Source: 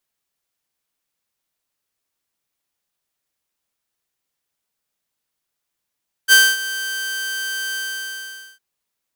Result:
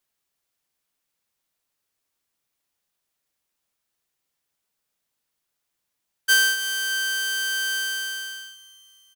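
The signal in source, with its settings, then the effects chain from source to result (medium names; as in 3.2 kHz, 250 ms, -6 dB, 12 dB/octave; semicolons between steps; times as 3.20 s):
ADSR saw 1.56 kHz, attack 43 ms, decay 240 ms, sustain -16.5 dB, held 1.47 s, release 838 ms -4 dBFS
compression 2:1, threshold -20 dBFS; feedback delay 308 ms, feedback 56%, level -19 dB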